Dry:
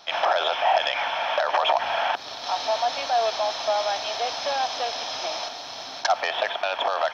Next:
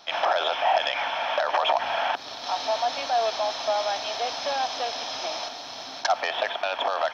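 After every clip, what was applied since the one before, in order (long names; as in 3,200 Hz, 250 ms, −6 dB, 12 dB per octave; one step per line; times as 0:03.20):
parametric band 260 Hz +4 dB 0.6 octaves
level −1.5 dB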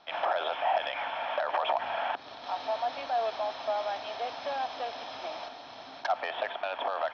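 high-frequency loss of the air 260 metres
level −4.5 dB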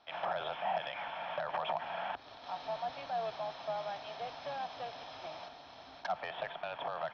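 sub-octave generator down 2 octaves, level −5 dB
level −7 dB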